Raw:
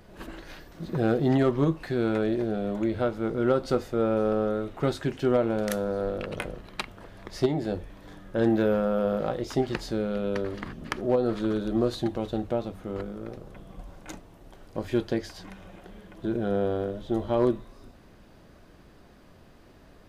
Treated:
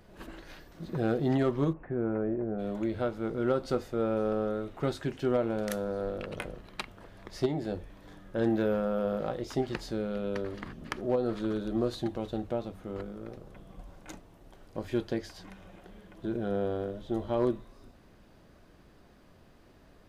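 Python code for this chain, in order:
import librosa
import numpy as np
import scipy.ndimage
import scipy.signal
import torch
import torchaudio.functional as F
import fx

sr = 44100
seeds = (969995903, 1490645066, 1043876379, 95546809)

y = fx.gaussian_blur(x, sr, sigma=5.3, at=(1.72, 2.58), fade=0.02)
y = F.gain(torch.from_numpy(y), -4.5).numpy()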